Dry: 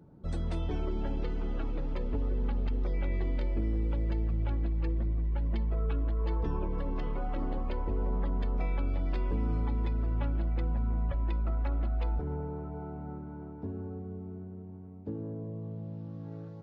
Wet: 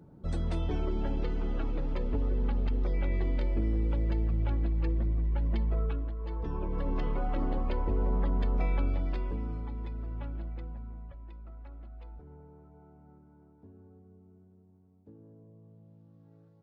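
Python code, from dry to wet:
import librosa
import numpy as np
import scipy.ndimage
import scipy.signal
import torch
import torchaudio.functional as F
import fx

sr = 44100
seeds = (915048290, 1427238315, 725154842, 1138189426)

y = fx.gain(x, sr, db=fx.line((5.79, 1.5), (6.18, -7.0), (6.91, 2.5), (8.83, 2.5), (9.62, -7.0), (10.42, -7.0), (11.2, -16.0)))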